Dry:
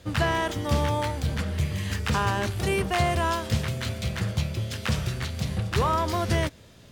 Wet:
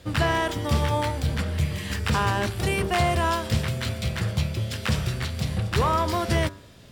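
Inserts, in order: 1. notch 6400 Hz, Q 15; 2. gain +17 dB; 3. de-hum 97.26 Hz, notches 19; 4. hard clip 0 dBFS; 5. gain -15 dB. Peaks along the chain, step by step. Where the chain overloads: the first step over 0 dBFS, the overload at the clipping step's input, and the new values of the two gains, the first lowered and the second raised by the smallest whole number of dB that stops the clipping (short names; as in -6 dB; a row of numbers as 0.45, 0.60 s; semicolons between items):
-12.5, +4.5, +4.0, 0.0, -15.0 dBFS; step 2, 4.0 dB; step 2 +13 dB, step 5 -11 dB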